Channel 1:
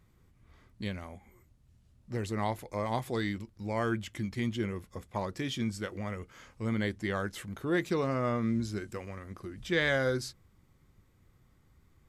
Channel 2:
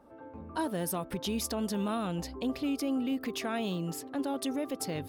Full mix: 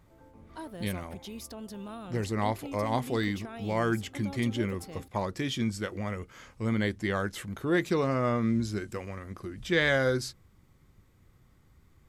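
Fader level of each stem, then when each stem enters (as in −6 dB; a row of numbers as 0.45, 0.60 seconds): +3.0, −9.5 decibels; 0.00, 0.00 seconds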